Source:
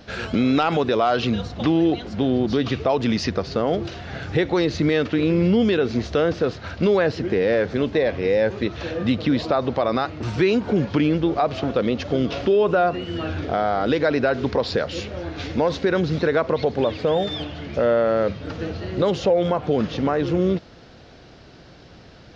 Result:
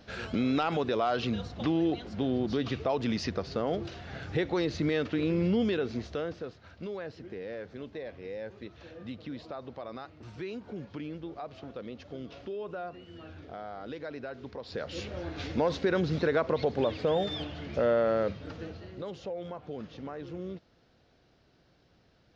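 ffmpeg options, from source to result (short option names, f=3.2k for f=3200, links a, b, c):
-af "volume=4dB,afade=t=out:st=5.62:d=0.93:silence=0.281838,afade=t=in:st=14.65:d=0.43:silence=0.223872,afade=t=out:st=18.09:d=0.92:silence=0.251189"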